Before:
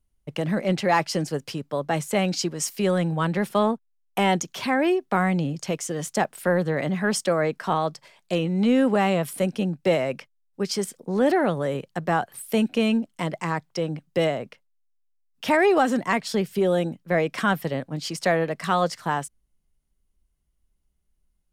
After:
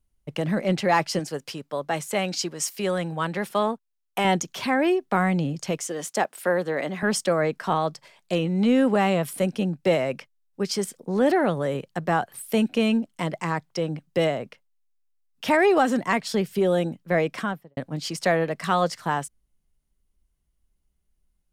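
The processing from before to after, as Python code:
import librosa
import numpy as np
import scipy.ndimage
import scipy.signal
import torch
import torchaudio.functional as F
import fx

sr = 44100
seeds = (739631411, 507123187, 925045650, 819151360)

y = fx.low_shelf(x, sr, hz=300.0, db=-8.5, at=(1.19, 4.25))
y = fx.highpass(y, sr, hz=280.0, slope=12, at=(5.88, 7.03))
y = fx.studio_fade_out(y, sr, start_s=17.24, length_s=0.53)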